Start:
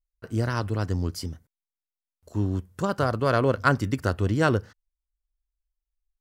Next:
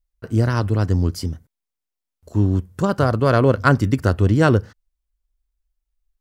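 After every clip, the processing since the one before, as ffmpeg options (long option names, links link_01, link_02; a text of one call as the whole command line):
ffmpeg -i in.wav -af "lowshelf=frequency=470:gain=5.5,volume=3.5dB" out.wav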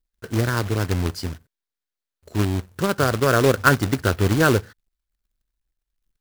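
ffmpeg -i in.wav -af "equalizer=frequency=400:width_type=o:width=0.67:gain=5,equalizer=frequency=1600:width_type=o:width=0.67:gain=8,equalizer=frequency=4000:width_type=o:width=0.67:gain=6,acrusher=bits=2:mode=log:mix=0:aa=0.000001,volume=-5dB" out.wav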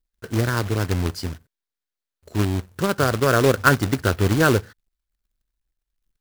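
ffmpeg -i in.wav -af anull out.wav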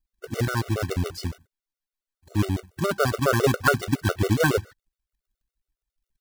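ffmpeg -i in.wav -af "afftfilt=real='re*gt(sin(2*PI*7.2*pts/sr)*(1-2*mod(floor(b*sr/1024/380),2)),0)':imag='im*gt(sin(2*PI*7.2*pts/sr)*(1-2*mod(floor(b*sr/1024/380),2)),0)':win_size=1024:overlap=0.75" out.wav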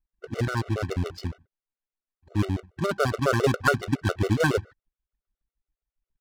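ffmpeg -i in.wav -af "adynamicsmooth=sensitivity=6.5:basefreq=2300,volume=-1.5dB" out.wav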